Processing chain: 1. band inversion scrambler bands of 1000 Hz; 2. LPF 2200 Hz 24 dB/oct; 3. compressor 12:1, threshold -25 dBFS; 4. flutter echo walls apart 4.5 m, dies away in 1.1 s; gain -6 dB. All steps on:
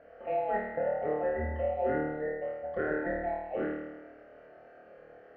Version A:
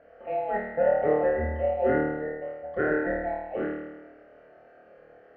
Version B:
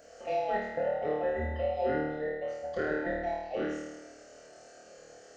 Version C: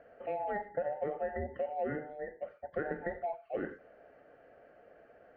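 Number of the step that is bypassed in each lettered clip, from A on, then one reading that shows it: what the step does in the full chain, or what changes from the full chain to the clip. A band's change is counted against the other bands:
3, mean gain reduction 2.0 dB; 2, momentary loudness spread change +16 LU; 4, crest factor change +2.5 dB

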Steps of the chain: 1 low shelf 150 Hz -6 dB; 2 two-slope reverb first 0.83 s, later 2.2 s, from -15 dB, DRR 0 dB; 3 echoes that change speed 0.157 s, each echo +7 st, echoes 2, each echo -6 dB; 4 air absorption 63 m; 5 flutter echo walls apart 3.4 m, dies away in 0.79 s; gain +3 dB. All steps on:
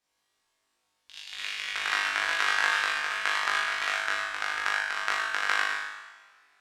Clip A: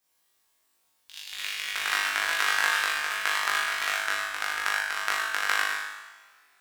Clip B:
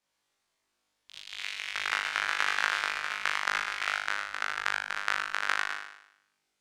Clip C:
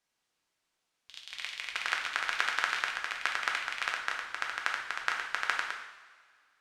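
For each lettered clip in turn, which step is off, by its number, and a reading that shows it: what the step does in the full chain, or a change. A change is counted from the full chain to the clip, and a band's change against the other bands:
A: 4, 8 kHz band +5.0 dB; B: 2, loudness change -3.0 LU; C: 5, crest factor change +5.5 dB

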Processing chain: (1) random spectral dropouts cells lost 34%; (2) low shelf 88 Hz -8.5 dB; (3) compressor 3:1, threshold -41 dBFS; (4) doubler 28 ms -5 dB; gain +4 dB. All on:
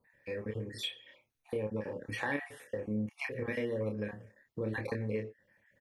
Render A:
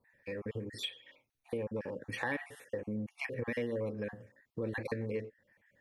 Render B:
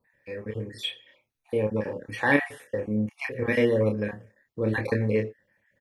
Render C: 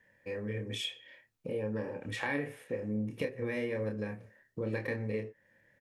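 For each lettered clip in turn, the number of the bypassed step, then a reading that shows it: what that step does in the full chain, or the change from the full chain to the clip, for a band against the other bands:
4, 125 Hz band -1.5 dB; 3, mean gain reduction 7.5 dB; 1, 1 kHz band -1.5 dB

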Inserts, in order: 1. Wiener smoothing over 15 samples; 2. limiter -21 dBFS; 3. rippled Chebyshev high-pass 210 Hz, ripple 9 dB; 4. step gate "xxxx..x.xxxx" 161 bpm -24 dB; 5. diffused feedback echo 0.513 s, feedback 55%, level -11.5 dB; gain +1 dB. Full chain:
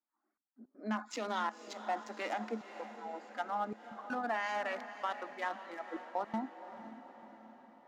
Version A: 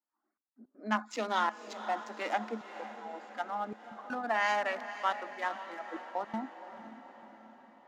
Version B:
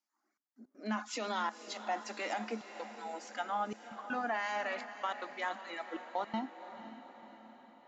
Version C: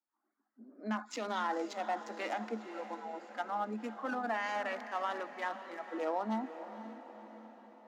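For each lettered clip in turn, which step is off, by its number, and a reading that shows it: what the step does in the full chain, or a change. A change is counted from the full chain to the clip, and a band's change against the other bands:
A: 2, crest factor change +2.5 dB; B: 1, 8 kHz band +4.5 dB; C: 4, 500 Hz band +2.0 dB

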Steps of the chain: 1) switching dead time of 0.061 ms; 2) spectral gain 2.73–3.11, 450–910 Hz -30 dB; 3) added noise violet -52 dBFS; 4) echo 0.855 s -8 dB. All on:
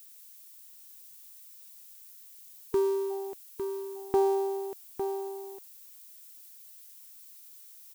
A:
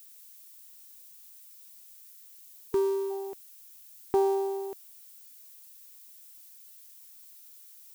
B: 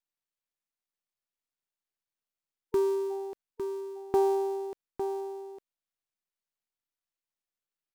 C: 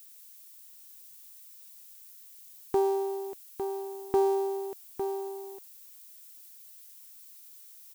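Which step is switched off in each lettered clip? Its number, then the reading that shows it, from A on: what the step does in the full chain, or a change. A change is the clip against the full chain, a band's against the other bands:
4, loudness change +1.5 LU; 3, momentary loudness spread change -7 LU; 2, 1 kHz band +2.0 dB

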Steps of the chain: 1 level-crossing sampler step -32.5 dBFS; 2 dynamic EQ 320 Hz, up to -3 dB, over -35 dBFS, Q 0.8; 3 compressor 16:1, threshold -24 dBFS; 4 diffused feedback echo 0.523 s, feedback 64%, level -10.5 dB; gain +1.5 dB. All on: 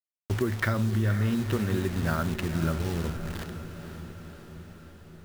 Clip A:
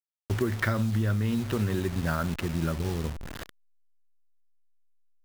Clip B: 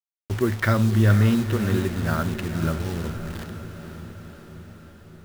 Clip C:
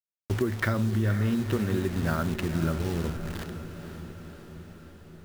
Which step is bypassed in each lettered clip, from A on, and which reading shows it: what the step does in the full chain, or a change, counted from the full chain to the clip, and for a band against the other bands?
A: 4, echo-to-direct -8.0 dB to none; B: 3, mean gain reduction 3.0 dB; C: 2, 500 Hz band +1.5 dB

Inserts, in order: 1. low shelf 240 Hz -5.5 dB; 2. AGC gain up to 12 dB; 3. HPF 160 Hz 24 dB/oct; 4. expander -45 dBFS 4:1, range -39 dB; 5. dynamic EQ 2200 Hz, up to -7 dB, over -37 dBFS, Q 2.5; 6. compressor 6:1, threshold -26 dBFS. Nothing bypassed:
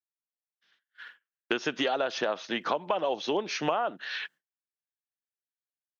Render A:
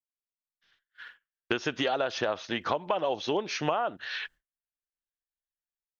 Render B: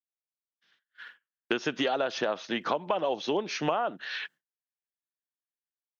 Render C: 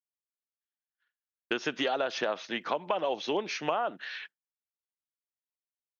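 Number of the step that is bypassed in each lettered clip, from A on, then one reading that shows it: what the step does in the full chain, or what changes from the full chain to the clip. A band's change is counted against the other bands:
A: 3, 125 Hz band +5.0 dB; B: 1, 125 Hz band +3.0 dB; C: 2, crest factor change -1.5 dB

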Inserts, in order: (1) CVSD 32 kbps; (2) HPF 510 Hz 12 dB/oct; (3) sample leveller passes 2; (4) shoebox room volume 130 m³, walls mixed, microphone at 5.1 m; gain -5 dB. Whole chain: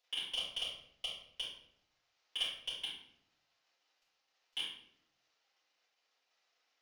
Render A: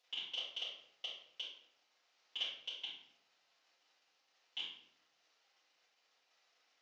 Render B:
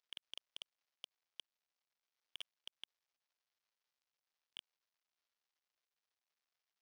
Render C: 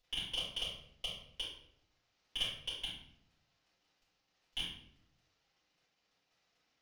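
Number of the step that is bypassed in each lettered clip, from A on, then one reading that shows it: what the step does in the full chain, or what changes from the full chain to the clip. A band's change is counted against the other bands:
3, 8 kHz band -6.5 dB; 4, echo-to-direct 11.0 dB to none; 2, 250 Hz band +7.0 dB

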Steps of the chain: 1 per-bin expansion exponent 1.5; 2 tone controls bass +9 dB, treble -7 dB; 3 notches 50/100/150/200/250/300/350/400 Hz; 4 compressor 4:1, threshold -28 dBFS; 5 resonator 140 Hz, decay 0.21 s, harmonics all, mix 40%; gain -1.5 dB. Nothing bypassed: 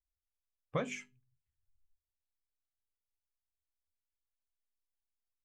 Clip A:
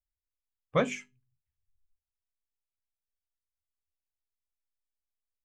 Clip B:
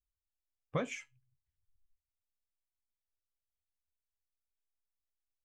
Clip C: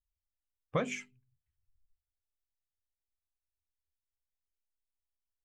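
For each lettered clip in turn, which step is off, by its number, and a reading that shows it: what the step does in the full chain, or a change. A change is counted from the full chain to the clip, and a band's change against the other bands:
4, mean gain reduction 5.5 dB; 3, momentary loudness spread change -7 LU; 5, momentary loudness spread change -7 LU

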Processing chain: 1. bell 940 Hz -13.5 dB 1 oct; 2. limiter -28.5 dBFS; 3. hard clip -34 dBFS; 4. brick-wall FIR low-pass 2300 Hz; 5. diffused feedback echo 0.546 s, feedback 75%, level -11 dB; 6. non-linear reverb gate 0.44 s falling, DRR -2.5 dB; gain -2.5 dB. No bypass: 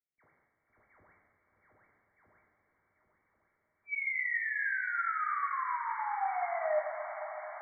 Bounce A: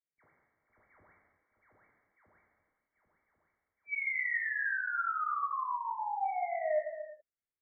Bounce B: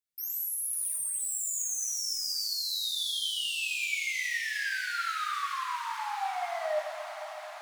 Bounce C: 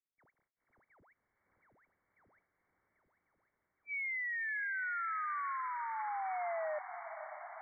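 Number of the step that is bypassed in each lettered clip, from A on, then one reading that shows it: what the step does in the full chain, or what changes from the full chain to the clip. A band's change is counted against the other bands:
5, momentary loudness spread change -2 LU; 4, momentary loudness spread change -3 LU; 6, echo-to-direct 3.5 dB to -7.5 dB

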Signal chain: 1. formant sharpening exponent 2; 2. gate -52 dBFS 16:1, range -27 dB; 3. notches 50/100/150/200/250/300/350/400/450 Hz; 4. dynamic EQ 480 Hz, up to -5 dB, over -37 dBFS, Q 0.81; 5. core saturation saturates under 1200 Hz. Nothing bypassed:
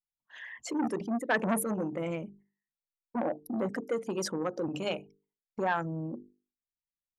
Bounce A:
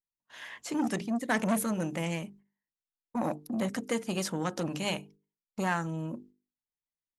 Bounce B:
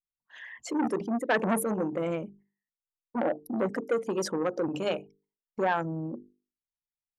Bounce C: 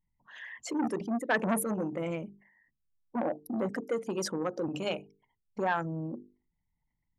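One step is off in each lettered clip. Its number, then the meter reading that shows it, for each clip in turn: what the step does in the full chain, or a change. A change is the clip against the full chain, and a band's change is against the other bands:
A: 1, 500 Hz band -4.5 dB; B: 4, 500 Hz band +3.0 dB; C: 2, momentary loudness spread change +2 LU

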